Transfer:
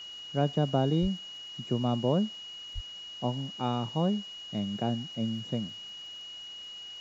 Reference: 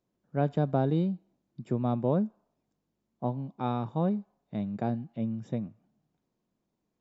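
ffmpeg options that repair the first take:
-filter_complex "[0:a]adeclick=t=4,bandreject=f=2.9k:w=30,asplit=3[a][b][c];[a]afade=t=out:st=1.01:d=0.02[d];[b]highpass=f=140:w=0.5412,highpass=f=140:w=1.3066,afade=t=in:st=1.01:d=0.02,afade=t=out:st=1.13:d=0.02[e];[c]afade=t=in:st=1.13:d=0.02[f];[d][e][f]amix=inputs=3:normalize=0,asplit=3[g][h][i];[g]afade=t=out:st=2.74:d=0.02[j];[h]highpass=f=140:w=0.5412,highpass=f=140:w=1.3066,afade=t=in:st=2.74:d=0.02,afade=t=out:st=2.86:d=0.02[k];[i]afade=t=in:st=2.86:d=0.02[l];[j][k][l]amix=inputs=3:normalize=0,afwtdn=0.0022"

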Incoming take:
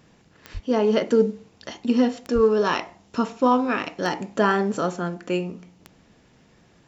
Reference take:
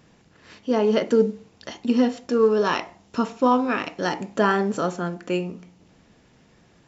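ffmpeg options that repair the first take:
-filter_complex "[0:a]adeclick=t=4,asplit=3[a][b][c];[a]afade=t=out:st=0.53:d=0.02[d];[b]highpass=f=140:w=0.5412,highpass=f=140:w=1.3066,afade=t=in:st=0.53:d=0.02,afade=t=out:st=0.65:d=0.02[e];[c]afade=t=in:st=0.65:d=0.02[f];[d][e][f]amix=inputs=3:normalize=0,asplit=3[g][h][i];[g]afade=t=out:st=2.34:d=0.02[j];[h]highpass=f=140:w=0.5412,highpass=f=140:w=1.3066,afade=t=in:st=2.34:d=0.02,afade=t=out:st=2.46:d=0.02[k];[i]afade=t=in:st=2.46:d=0.02[l];[j][k][l]amix=inputs=3:normalize=0"

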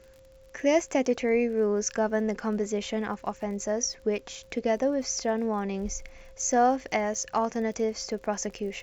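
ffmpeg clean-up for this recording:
-af "adeclick=t=4,bandreject=f=530:w=30"

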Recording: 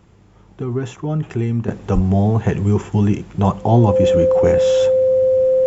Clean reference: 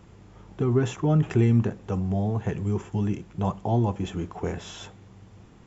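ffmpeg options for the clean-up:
-filter_complex "[0:a]bandreject=f=520:w=30,asplit=3[a][b][c];[a]afade=t=out:st=1.94:d=0.02[d];[b]highpass=f=140:w=0.5412,highpass=f=140:w=1.3066,afade=t=in:st=1.94:d=0.02,afade=t=out:st=2.06:d=0.02[e];[c]afade=t=in:st=2.06:d=0.02[f];[d][e][f]amix=inputs=3:normalize=0,asetnsamples=n=441:p=0,asendcmd='1.68 volume volume -10.5dB',volume=0dB"

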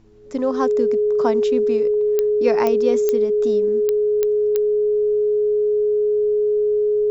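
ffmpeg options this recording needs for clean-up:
-af "adeclick=t=4,bandreject=f=109:t=h:w=4,bandreject=f=218:t=h:w=4,bandreject=f=327:t=h:w=4,bandreject=f=420:w=30,agate=range=-21dB:threshold=-10dB"

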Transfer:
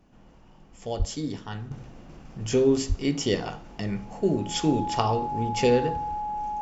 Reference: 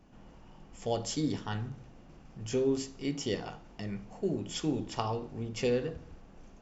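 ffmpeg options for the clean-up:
-filter_complex "[0:a]bandreject=f=840:w=30,asplit=3[a][b][c];[a]afade=t=out:st=0.98:d=0.02[d];[b]highpass=f=140:w=0.5412,highpass=f=140:w=1.3066,afade=t=in:st=0.98:d=0.02,afade=t=out:st=1.1:d=0.02[e];[c]afade=t=in:st=1.1:d=0.02[f];[d][e][f]amix=inputs=3:normalize=0,asplit=3[g][h][i];[g]afade=t=out:st=2.88:d=0.02[j];[h]highpass=f=140:w=0.5412,highpass=f=140:w=1.3066,afade=t=in:st=2.88:d=0.02,afade=t=out:st=3:d=0.02[k];[i]afade=t=in:st=3:d=0.02[l];[j][k][l]amix=inputs=3:normalize=0,asetnsamples=n=441:p=0,asendcmd='1.71 volume volume -8dB',volume=0dB"

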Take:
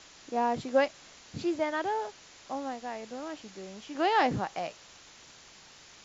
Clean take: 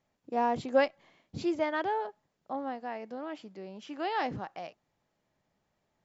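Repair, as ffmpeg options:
-af "afwtdn=0.0035,asetnsamples=n=441:p=0,asendcmd='3.95 volume volume -6.5dB',volume=0dB"

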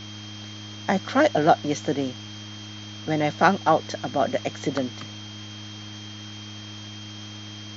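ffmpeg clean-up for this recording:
-af "bandreject=f=104.5:t=h:w=4,bandreject=f=209:t=h:w=4,bandreject=f=313.5:t=h:w=4,bandreject=f=3.2k:w=30,afwtdn=0.01"

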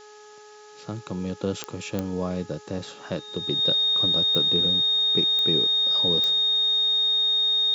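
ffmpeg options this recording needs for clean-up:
-af "adeclick=t=4,bandreject=f=421.3:t=h:w=4,bandreject=f=842.6:t=h:w=4,bandreject=f=1.2639k:t=h:w=4,bandreject=f=1.6852k:t=h:w=4,bandreject=f=3.7k:w=30,afftdn=nr=24:nf=-47"

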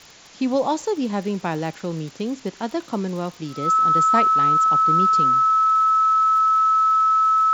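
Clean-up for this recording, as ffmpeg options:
-af "adeclick=t=4,bandreject=f=1.3k:w=30,afftdn=nr=22:nf=-45"

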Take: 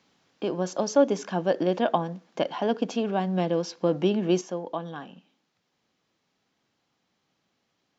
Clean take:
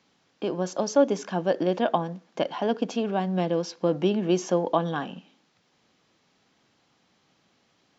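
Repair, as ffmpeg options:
-af "asetnsamples=n=441:p=0,asendcmd='4.41 volume volume 8.5dB',volume=0dB"

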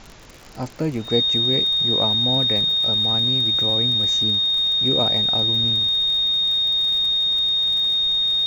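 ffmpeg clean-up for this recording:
-af "adeclick=t=4,bandreject=f=3.7k:w=30,afftdn=nr=30:nf=-28"

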